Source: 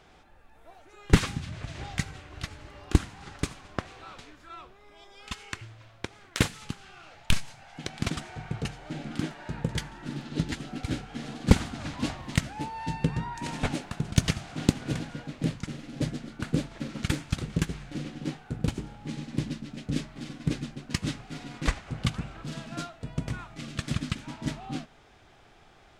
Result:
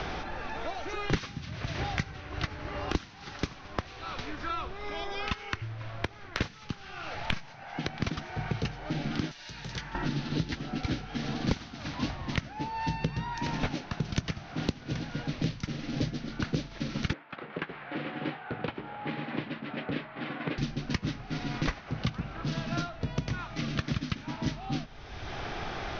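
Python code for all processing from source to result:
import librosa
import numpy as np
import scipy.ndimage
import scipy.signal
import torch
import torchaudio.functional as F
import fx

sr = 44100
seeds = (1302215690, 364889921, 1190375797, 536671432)

y = fx.chain(x, sr, fx.clip_hard(threshold_db=-27.5),
    fx.pre_emphasis(coefficient=0.9),
    fx.band_squash(depth_pct=70), at=(9.31, 9.95))
y = fx.chain(y, sr, fx.bandpass_edges(low_hz=570.0, high_hz=2700.0),
    fx.air_absorb(metres=350.0), at=(17.13, 20.58))
y = scipy.signal.sosfilt(scipy.signal.cheby1(6, 1.0, 6000.0, 'lowpass', fs=sr, output='sos'), y)
y = fx.band_squash(y, sr, depth_pct=100)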